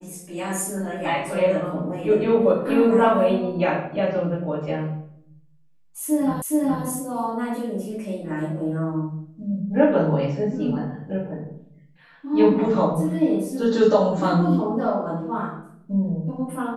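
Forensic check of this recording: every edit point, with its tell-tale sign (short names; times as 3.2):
6.42 repeat of the last 0.42 s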